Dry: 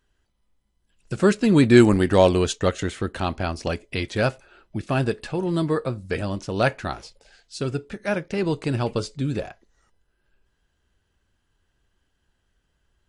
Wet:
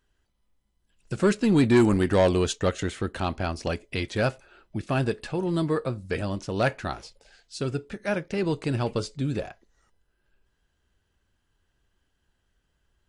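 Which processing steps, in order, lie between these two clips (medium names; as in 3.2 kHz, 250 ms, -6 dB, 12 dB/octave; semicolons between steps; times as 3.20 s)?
saturation -10 dBFS, distortion -14 dB; trim -2 dB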